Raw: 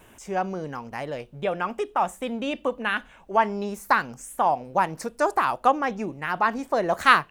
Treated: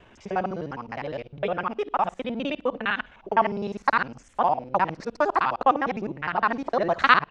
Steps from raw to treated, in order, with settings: time reversed locally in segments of 51 ms; low-pass 4.9 kHz 24 dB/octave

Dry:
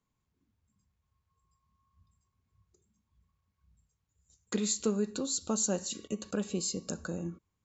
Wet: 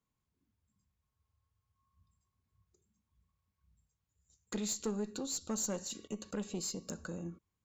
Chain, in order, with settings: valve stage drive 24 dB, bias 0.3; spectral freeze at 1.11 s, 0.64 s; trim -3.5 dB

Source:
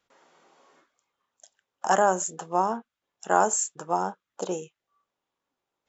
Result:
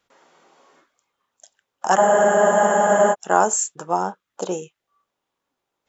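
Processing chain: spectral freeze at 2.00 s, 1.13 s; trim +4.5 dB

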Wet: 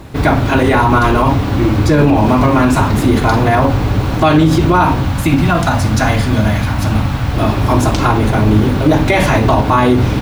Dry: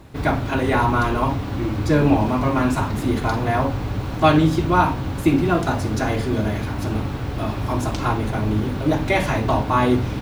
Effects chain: 5.05–7.34 s: peaking EQ 390 Hz -14 dB 0.62 oct; loudness maximiser +12 dB; trim -1 dB

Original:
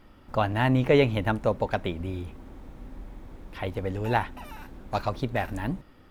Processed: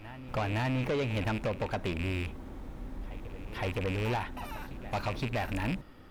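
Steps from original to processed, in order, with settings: rattle on loud lows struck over -32 dBFS, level -25 dBFS; compression 6:1, threshold -24 dBFS, peak gain reduction 9 dB; reverse echo 515 ms -19.5 dB; saturation -27.5 dBFS, distortion -10 dB; trim +1.5 dB

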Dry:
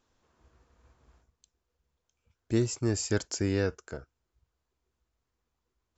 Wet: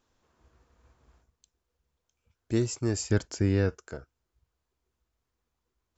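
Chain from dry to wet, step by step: 3.03–3.69 s: tone controls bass +6 dB, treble -6 dB

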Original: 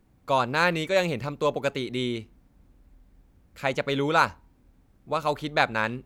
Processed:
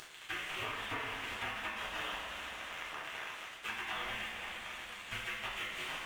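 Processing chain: one-bit delta coder 16 kbps, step -33.5 dBFS; spectral gate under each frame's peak -25 dB weak; crossover distortion -55 dBFS; reverberation, pre-delay 3 ms, DRR -5.5 dB; compression 6:1, threshold -46 dBFS, peak gain reduction 12.5 dB; trim +9 dB

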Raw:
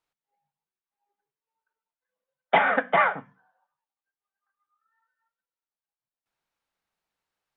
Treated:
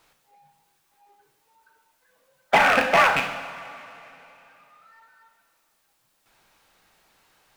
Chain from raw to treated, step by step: rattle on loud lows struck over -42 dBFS, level -13 dBFS; two-slope reverb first 0.64 s, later 2.4 s, from -18 dB, DRR 6.5 dB; power-law waveshaper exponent 0.7

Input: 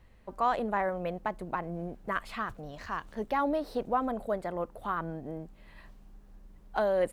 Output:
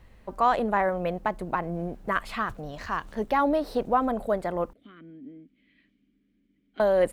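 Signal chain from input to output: 4.73–6.80 s: vowel filter i; trim +5.5 dB

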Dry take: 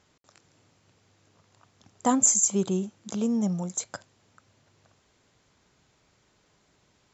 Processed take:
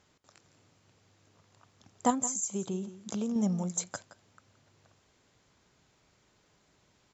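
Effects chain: 2.10–3.36 s: compression 6:1, threshold -28 dBFS, peak gain reduction 11.5 dB; on a send: delay 171 ms -15 dB; on the sum: trim -2 dB

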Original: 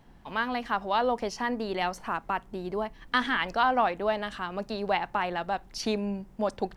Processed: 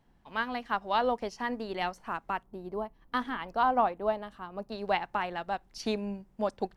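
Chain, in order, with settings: 2.43–4.72 s: high-order bell 3.6 kHz -8 dB 2.8 oct; upward expansion 1.5:1, over -43 dBFS

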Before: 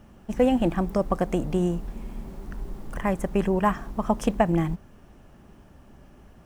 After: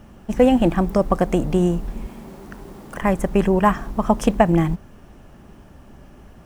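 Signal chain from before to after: 2.06–3.02 s: high-pass 210 Hz 6 dB/octave; trim +6 dB

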